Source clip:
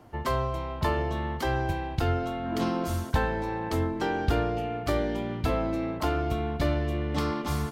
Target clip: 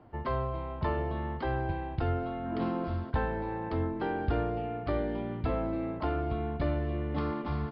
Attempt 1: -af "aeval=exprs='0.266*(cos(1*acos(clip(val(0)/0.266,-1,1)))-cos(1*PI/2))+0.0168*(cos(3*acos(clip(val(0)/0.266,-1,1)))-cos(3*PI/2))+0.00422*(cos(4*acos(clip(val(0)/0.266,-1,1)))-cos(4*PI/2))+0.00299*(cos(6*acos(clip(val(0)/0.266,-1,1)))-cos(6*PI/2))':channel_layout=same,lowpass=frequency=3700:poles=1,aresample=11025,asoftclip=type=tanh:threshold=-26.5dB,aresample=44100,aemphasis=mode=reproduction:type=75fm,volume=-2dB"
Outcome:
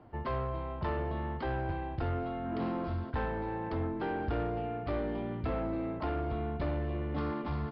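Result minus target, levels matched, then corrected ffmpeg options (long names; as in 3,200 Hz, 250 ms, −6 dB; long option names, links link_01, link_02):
soft clipping: distortion +10 dB
-af "aeval=exprs='0.266*(cos(1*acos(clip(val(0)/0.266,-1,1)))-cos(1*PI/2))+0.0168*(cos(3*acos(clip(val(0)/0.266,-1,1)))-cos(3*PI/2))+0.00422*(cos(4*acos(clip(val(0)/0.266,-1,1)))-cos(4*PI/2))+0.00299*(cos(6*acos(clip(val(0)/0.266,-1,1)))-cos(6*PI/2))':channel_layout=same,lowpass=frequency=3700:poles=1,aresample=11025,asoftclip=type=tanh:threshold=-17.5dB,aresample=44100,aemphasis=mode=reproduction:type=75fm,volume=-2dB"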